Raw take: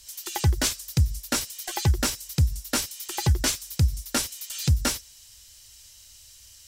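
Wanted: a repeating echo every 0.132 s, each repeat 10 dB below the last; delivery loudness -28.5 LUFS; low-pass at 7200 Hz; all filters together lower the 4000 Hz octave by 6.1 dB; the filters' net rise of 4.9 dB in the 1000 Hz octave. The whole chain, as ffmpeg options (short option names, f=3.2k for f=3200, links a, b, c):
-af "lowpass=7.2k,equalizer=f=1k:t=o:g=7,equalizer=f=4k:t=o:g=-8,aecho=1:1:132|264|396|528:0.316|0.101|0.0324|0.0104,volume=-1.5dB"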